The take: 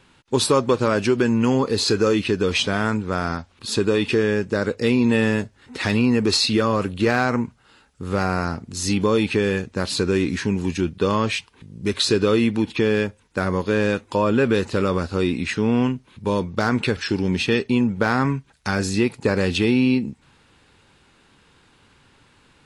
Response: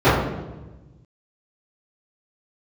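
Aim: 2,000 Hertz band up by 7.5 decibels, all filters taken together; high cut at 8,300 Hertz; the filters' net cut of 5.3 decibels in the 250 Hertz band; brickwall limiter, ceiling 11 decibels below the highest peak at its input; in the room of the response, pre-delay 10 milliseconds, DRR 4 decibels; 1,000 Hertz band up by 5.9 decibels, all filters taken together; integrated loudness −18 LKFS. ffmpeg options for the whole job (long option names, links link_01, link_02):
-filter_complex "[0:a]lowpass=8300,equalizer=frequency=250:width_type=o:gain=-7,equalizer=frequency=1000:width_type=o:gain=5,equalizer=frequency=2000:width_type=o:gain=8.5,alimiter=limit=-13.5dB:level=0:latency=1,asplit=2[link_01][link_02];[1:a]atrim=start_sample=2205,adelay=10[link_03];[link_02][link_03]afir=irnorm=-1:irlink=0,volume=-30.5dB[link_04];[link_01][link_04]amix=inputs=2:normalize=0,volume=4.5dB"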